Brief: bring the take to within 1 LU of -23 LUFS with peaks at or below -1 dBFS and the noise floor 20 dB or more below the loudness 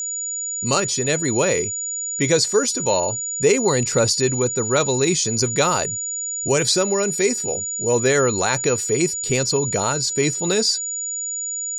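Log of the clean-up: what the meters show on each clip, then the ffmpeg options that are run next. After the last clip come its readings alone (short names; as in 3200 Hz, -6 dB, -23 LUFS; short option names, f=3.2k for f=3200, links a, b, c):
steady tone 6900 Hz; tone level -24 dBFS; loudness -19.5 LUFS; peak -6.0 dBFS; loudness target -23.0 LUFS
-> -af "bandreject=f=6.9k:w=30"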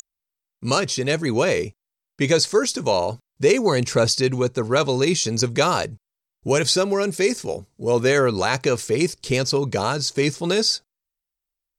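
steady tone none; loudness -21.0 LUFS; peak -7.0 dBFS; loudness target -23.0 LUFS
-> -af "volume=-2dB"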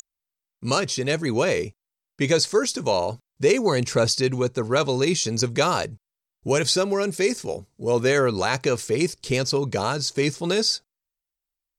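loudness -23.0 LUFS; peak -9.0 dBFS; noise floor -88 dBFS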